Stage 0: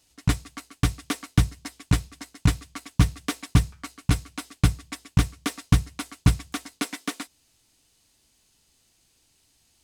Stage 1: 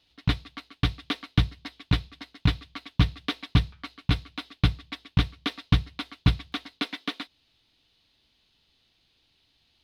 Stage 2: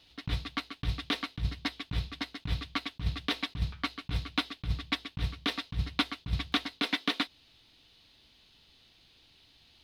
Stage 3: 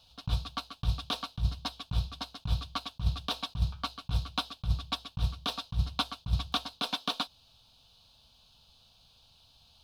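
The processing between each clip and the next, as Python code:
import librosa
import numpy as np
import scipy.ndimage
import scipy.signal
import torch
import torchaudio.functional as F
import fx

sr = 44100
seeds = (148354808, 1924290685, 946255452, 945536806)

y1 = fx.high_shelf_res(x, sr, hz=5400.0, db=-13.5, q=3.0)
y1 = y1 * librosa.db_to_amplitude(-2.5)
y2 = fx.over_compress(y1, sr, threshold_db=-30.0, ratio=-1.0)
y3 = fx.fixed_phaser(y2, sr, hz=820.0, stages=4)
y3 = y3 * librosa.db_to_amplitude(3.5)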